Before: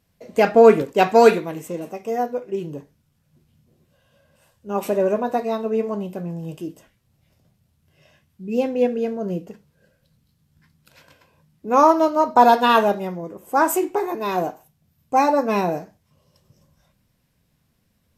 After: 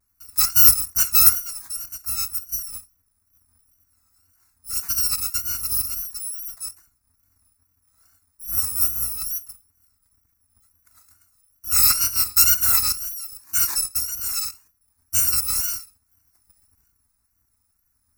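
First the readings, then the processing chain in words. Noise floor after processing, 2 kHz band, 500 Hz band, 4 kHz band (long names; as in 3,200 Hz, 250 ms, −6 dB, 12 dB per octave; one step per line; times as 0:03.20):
−70 dBFS, −7.0 dB, below −35 dB, +8.5 dB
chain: samples in bit-reversed order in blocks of 256 samples
phaser with its sweep stopped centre 1,300 Hz, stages 4
tape wow and flutter 92 cents
level −1 dB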